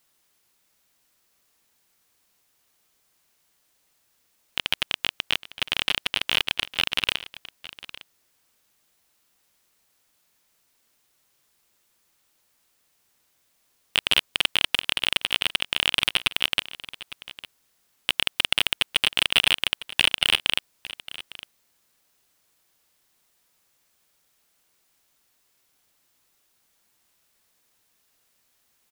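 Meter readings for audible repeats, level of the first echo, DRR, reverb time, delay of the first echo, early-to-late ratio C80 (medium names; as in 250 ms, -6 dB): 1, -17.0 dB, no reverb, no reverb, 856 ms, no reverb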